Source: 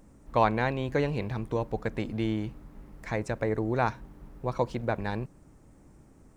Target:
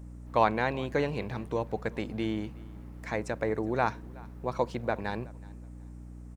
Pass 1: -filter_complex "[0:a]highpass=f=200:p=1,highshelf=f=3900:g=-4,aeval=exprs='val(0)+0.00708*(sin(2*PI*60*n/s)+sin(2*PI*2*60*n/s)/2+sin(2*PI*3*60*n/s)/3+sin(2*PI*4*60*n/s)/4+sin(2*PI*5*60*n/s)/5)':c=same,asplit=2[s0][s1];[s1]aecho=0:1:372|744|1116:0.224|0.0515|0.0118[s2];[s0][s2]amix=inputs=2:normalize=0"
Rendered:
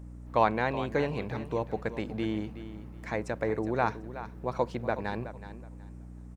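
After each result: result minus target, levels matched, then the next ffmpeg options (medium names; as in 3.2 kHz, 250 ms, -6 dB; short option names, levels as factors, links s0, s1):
echo-to-direct +10.5 dB; 8 kHz band -2.5 dB
-filter_complex "[0:a]highpass=f=200:p=1,highshelf=f=3900:g=-4,aeval=exprs='val(0)+0.00708*(sin(2*PI*60*n/s)+sin(2*PI*2*60*n/s)/2+sin(2*PI*3*60*n/s)/3+sin(2*PI*4*60*n/s)/4+sin(2*PI*5*60*n/s)/5)':c=same,asplit=2[s0][s1];[s1]aecho=0:1:372|744:0.0668|0.0154[s2];[s0][s2]amix=inputs=2:normalize=0"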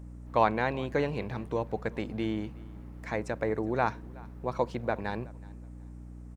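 8 kHz band -3.0 dB
-filter_complex "[0:a]highpass=f=200:p=1,aeval=exprs='val(0)+0.00708*(sin(2*PI*60*n/s)+sin(2*PI*2*60*n/s)/2+sin(2*PI*3*60*n/s)/3+sin(2*PI*4*60*n/s)/4+sin(2*PI*5*60*n/s)/5)':c=same,asplit=2[s0][s1];[s1]aecho=0:1:372|744:0.0668|0.0154[s2];[s0][s2]amix=inputs=2:normalize=0"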